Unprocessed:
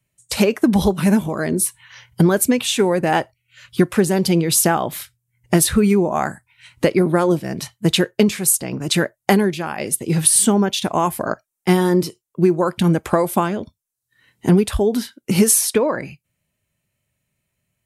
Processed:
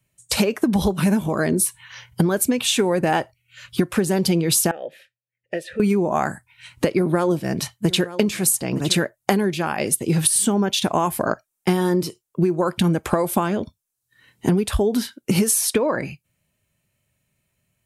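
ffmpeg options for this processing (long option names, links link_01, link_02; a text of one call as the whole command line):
ffmpeg -i in.wav -filter_complex "[0:a]asettb=1/sr,asplit=3[link_01][link_02][link_03];[link_01]atrim=end=4.714[link_04];[link_02]atrim=start=4.71:end=5.8,asetpts=PTS-STARTPTS,afade=type=in:duration=0.004:curve=qsin,afade=type=out:start_time=1.086:duration=0.004:curve=qsin,asplit=3[link_05][link_06][link_07];[link_05]bandpass=frequency=530:width_type=q:width=8,volume=0dB[link_08];[link_06]bandpass=frequency=1840:width_type=q:width=8,volume=-6dB[link_09];[link_07]bandpass=frequency=2480:width_type=q:width=8,volume=-9dB[link_10];[link_08][link_09][link_10]amix=inputs=3:normalize=0[link_11];[link_03]atrim=start=5.796[link_12];[link_04][link_11]acrossfade=duration=0.004:curve1=hsin:curve2=qsin[link_13];[link_13][link_12]acrossfade=duration=0.004:curve1=qsin:curve2=hsin,asettb=1/sr,asplit=3[link_14][link_15][link_16];[link_14]atrim=end=6.944[link_17];[link_15]atrim=start=6.94:end=9.05,asetpts=PTS-STARTPTS,afade=type=in:duration=0.004:curve=qsin,afade=type=out:start_time=2.106:duration=0.004:curve=qsin,aecho=1:1:913:0.126,atrim=end_sample=93051[link_18];[link_16]atrim=start=9.046[link_19];[link_17][link_18]acrossfade=duration=0.004:curve1=hsin:curve2=qsin[link_20];[link_20][link_19]acrossfade=duration=0.004:curve1=qsin:curve2=hsin,bandreject=frequency=2000:width=28,acompressor=threshold=-18dB:ratio=6,volume=2.5dB" out.wav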